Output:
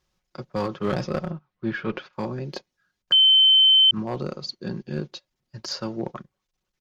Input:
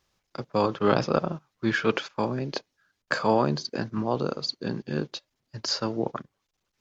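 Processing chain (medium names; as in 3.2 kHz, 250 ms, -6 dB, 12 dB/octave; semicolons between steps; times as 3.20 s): bass shelf 150 Hz +7.5 dB; comb 5.5 ms, depth 42%; one-sided clip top -18 dBFS; 1.31–2.13 s: distance through air 230 m; 3.12–3.91 s: bleep 3.08 kHz -8 dBFS; trim -4 dB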